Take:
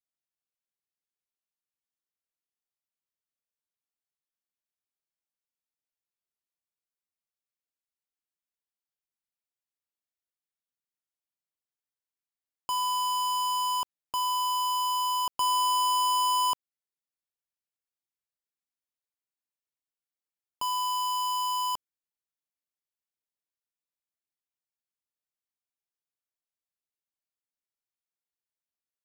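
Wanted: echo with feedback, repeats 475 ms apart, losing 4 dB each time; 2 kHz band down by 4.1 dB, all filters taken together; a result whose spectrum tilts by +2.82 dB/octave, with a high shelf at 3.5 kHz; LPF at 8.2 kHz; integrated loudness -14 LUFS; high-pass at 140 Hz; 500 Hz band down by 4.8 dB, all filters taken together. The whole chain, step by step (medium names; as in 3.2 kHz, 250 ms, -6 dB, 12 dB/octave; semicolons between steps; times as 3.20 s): high-pass 140 Hz; low-pass 8.2 kHz; peaking EQ 500 Hz -6 dB; peaking EQ 2 kHz -3.5 dB; treble shelf 3.5 kHz -5 dB; feedback delay 475 ms, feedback 63%, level -4 dB; trim +12 dB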